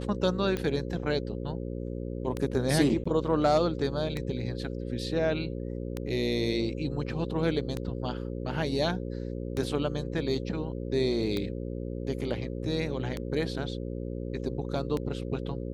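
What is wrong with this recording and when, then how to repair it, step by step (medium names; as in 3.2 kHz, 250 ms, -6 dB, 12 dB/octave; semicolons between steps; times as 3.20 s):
buzz 60 Hz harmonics 9 -35 dBFS
tick 33 1/3 rpm -18 dBFS
3.04–3.06 s: dropout 15 ms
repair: de-click; de-hum 60 Hz, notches 9; interpolate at 3.04 s, 15 ms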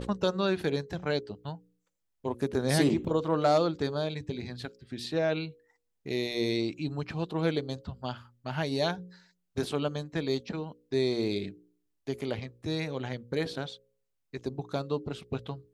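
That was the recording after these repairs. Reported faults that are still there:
nothing left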